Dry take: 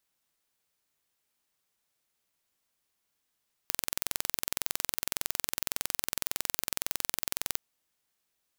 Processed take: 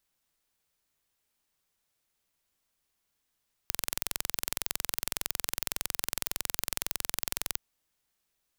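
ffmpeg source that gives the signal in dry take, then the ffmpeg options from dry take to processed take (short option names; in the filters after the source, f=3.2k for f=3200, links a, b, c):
-f lavfi -i "aevalsrc='0.794*eq(mod(n,2023),0)':d=3.89:s=44100"
-af "lowshelf=f=69:g=10"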